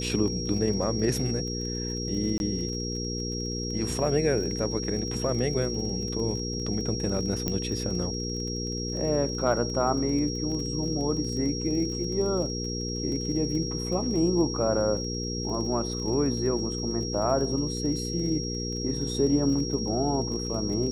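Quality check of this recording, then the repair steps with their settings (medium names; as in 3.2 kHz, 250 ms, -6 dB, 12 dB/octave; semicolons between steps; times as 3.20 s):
crackle 29 per s -35 dBFS
hum 60 Hz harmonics 8 -33 dBFS
whine 5.6 kHz -34 dBFS
2.38–2.40 s: dropout 21 ms
7.48 s: pop -13 dBFS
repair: de-click; band-stop 5.6 kHz, Q 30; de-hum 60 Hz, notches 8; interpolate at 2.38 s, 21 ms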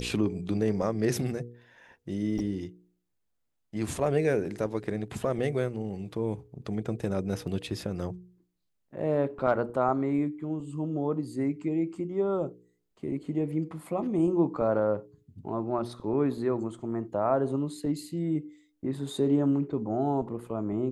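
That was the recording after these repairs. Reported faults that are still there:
7.48 s: pop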